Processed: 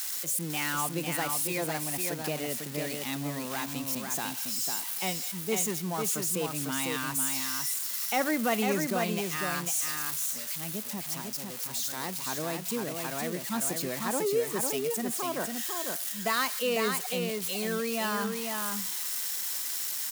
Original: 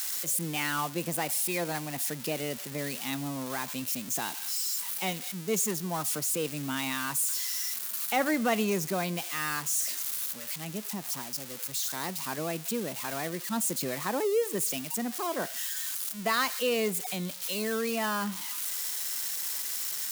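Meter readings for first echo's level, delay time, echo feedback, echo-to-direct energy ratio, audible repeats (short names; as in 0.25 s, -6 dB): -4.5 dB, 0.5 s, no steady repeat, -4.5 dB, 1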